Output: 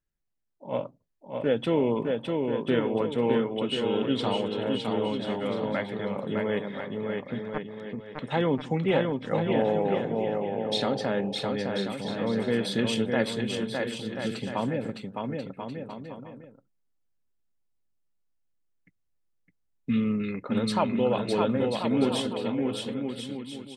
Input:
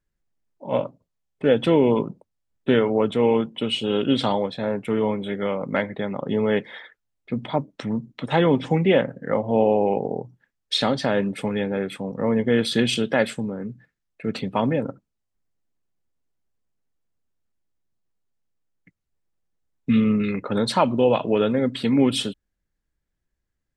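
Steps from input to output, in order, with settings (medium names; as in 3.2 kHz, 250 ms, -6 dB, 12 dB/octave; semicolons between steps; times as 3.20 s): 7.39–8.15 s: power-law waveshaper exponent 3; bouncing-ball echo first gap 610 ms, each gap 0.7×, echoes 5; trim -7 dB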